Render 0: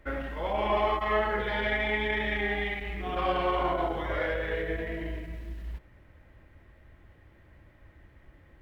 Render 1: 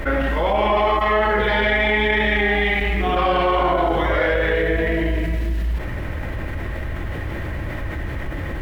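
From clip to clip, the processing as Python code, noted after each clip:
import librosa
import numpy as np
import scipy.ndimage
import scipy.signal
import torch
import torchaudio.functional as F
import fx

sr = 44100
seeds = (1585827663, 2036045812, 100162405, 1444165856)

y = fx.env_flatten(x, sr, amount_pct=70)
y = y * librosa.db_to_amplitude(7.0)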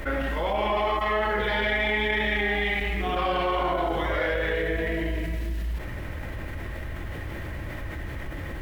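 y = fx.high_shelf(x, sr, hz=3900.0, db=6.5)
y = y * librosa.db_to_amplitude(-7.5)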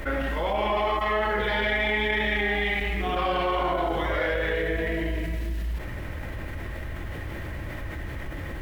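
y = fx.dmg_crackle(x, sr, seeds[0], per_s=360.0, level_db=-56.0)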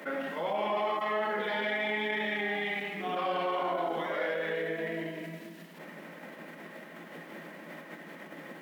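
y = scipy.signal.sosfilt(scipy.signal.cheby1(6, 3, 160.0, 'highpass', fs=sr, output='sos'), x)
y = y * librosa.db_to_amplitude(-4.5)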